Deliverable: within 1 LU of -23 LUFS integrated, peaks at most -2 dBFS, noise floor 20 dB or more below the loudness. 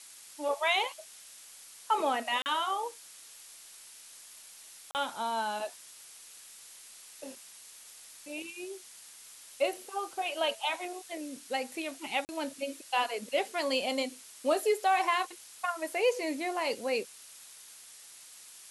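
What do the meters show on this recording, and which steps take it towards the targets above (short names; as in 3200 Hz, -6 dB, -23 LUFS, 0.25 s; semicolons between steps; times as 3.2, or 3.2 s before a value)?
dropouts 3; longest dropout 39 ms; noise floor -52 dBFS; noise floor target -53 dBFS; loudness -32.5 LUFS; peak -15.5 dBFS; loudness target -23.0 LUFS
-> interpolate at 2.42/4.91/12.25, 39 ms; denoiser 6 dB, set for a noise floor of -52 dBFS; gain +9.5 dB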